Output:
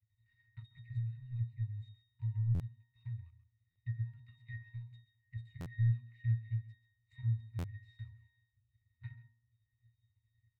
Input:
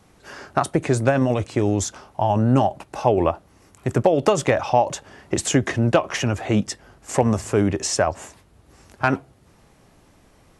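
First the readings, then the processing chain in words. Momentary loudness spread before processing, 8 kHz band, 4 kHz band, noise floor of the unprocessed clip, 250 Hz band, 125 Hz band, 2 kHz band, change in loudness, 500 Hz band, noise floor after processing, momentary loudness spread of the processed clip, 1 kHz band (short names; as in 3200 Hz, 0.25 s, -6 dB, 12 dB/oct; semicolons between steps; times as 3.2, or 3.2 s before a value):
10 LU, under -40 dB, under -30 dB, -55 dBFS, -30.5 dB, -11.0 dB, -28.5 dB, -18.0 dB, under -40 dB, -83 dBFS, 20 LU, under -40 dB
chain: CVSD 64 kbps; level quantiser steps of 11 dB; high shelf 3100 Hz -6 dB; octave resonator A#, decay 0.49 s; echo 0.133 s -11 dB; transient shaper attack +8 dB, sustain -2 dB; elliptic band-stop 100–2100 Hz, stop band 60 dB; bell 6100 Hz -13 dB 0.47 oct; stuck buffer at 2.54/3.7/5.6/7.58, samples 512, times 4; gain +2.5 dB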